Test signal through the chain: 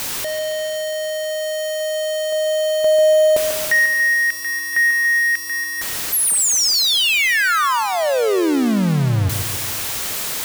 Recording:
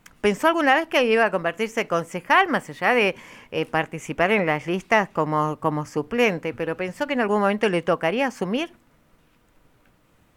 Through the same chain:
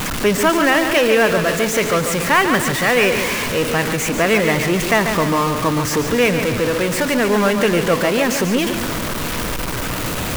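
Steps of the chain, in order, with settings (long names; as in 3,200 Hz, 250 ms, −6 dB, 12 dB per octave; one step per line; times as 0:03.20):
converter with a step at zero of −18.5 dBFS
dynamic equaliser 790 Hz, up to −7 dB, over −37 dBFS, Q 4.8
feedback echo at a low word length 142 ms, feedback 55%, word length 6 bits, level −7 dB
level +1.5 dB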